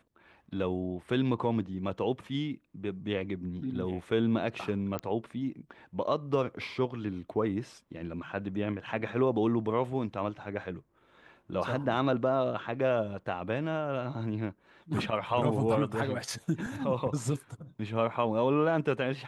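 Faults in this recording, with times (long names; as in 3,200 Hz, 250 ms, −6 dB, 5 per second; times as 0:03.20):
0:04.99: click −19 dBFS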